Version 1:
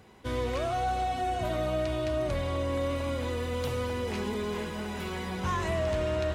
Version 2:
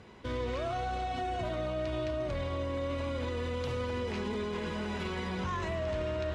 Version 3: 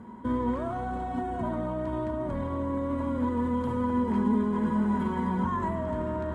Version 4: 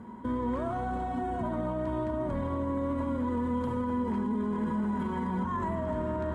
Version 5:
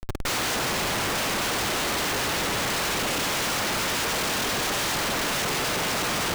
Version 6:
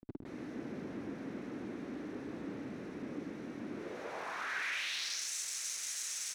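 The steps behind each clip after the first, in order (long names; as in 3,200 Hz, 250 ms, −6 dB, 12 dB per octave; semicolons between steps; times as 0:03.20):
low-pass filter 5,700 Hz 12 dB per octave; notch filter 770 Hz, Q 13; brickwall limiter −29.5 dBFS, peak gain reduction 8.5 dB; level +2.5 dB
flat-topped bell 3,800 Hz −15.5 dB; hollow resonant body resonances 230/950/3,200 Hz, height 17 dB, ringing for 60 ms
brickwall limiter −23.5 dBFS, peak gain reduction 8 dB
in parallel at −2 dB: speech leveller; on the sum: cochlear-implant simulation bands 1; comparator with hysteresis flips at −27.5 dBFS
phase distortion by the signal itself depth 0.5 ms; band-pass filter sweep 270 Hz → 7,200 Hz, 0:03.69–0:05.29; single-tap delay 131 ms −7.5 dB; level −4.5 dB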